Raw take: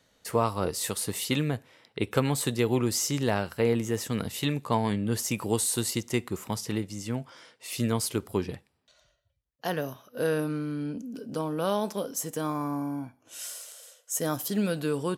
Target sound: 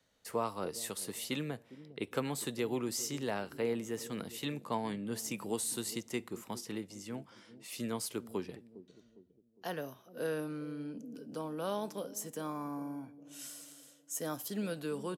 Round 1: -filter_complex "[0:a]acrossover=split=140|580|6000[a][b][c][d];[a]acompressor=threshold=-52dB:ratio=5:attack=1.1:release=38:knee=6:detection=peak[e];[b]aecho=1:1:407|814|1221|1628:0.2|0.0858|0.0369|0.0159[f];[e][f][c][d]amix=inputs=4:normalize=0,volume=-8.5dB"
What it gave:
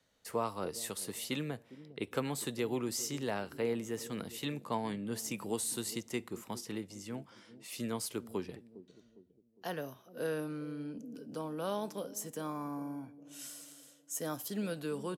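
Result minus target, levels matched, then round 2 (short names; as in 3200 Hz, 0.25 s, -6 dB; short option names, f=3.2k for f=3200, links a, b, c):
compressor: peak gain reduction -5.5 dB
-filter_complex "[0:a]acrossover=split=140|580|6000[a][b][c][d];[a]acompressor=threshold=-59dB:ratio=5:attack=1.1:release=38:knee=6:detection=peak[e];[b]aecho=1:1:407|814|1221|1628:0.2|0.0858|0.0369|0.0159[f];[e][f][c][d]amix=inputs=4:normalize=0,volume=-8.5dB"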